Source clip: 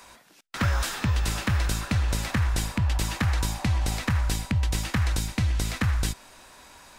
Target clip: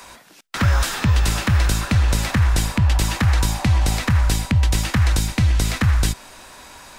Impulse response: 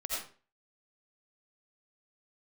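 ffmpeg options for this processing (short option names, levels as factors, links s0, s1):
-filter_complex "[0:a]acrossover=split=200[s0][s1];[s1]acompressor=threshold=0.0355:ratio=3[s2];[s0][s2]amix=inputs=2:normalize=0,volume=2.51"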